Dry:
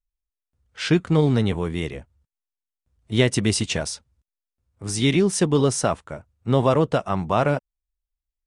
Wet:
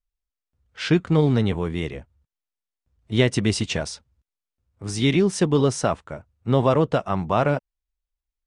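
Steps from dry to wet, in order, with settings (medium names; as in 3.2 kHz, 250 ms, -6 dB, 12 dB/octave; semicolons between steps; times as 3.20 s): distance through air 53 m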